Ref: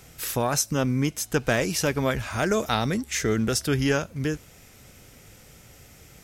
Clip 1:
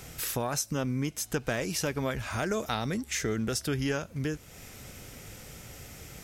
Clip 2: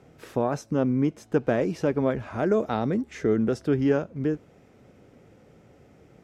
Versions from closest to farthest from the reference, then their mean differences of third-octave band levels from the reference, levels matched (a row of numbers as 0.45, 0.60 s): 1, 2; 4.0, 9.0 dB